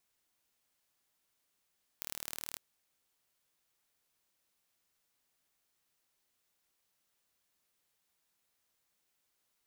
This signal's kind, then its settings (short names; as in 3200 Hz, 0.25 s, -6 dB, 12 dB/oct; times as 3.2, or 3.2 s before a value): pulse train 38.3/s, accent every 2, -11 dBFS 0.56 s